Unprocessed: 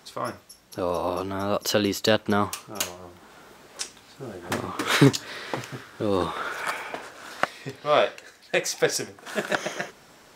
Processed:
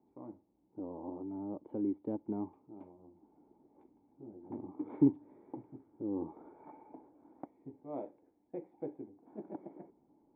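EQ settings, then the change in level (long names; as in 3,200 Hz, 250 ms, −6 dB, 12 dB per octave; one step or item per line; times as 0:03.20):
formant resonators in series u
−4.5 dB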